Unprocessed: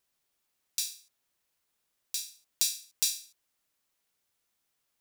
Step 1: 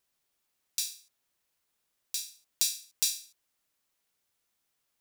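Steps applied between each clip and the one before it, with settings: no audible change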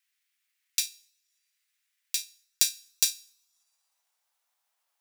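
two-slope reverb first 0.66 s, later 2 s, from -18 dB, DRR 11.5 dB; transient shaper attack +6 dB, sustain -8 dB; high-pass sweep 2 kHz -> 790 Hz, 2.19–3.78 s; trim -1 dB

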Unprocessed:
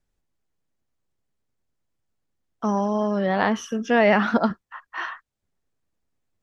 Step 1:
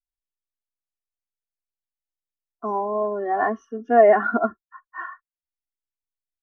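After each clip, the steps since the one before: resonant high shelf 2 kHz -8 dB, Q 1.5; comb 2.8 ms, depth 96%; spectral contrast expander 1.5:1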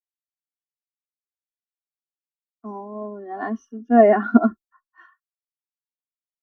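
graphic EQ 125/250/500/1000/2000 Hz -4/+9/-8/-4/-7 dB; three bands expanded up and down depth 100%; trim -1 dB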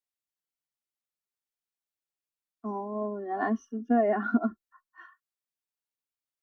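compression 6:1, threshold -22 dBFS, peak gain reduction 14 dB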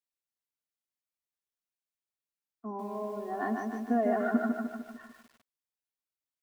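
bit-crushed delay 150 ms, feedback 55%, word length 9-bit, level -3.5 dB; trim -4.5 dB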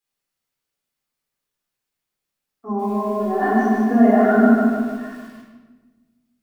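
simulated room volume 990 m³, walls mixed, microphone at 4 m; trim +5 dB

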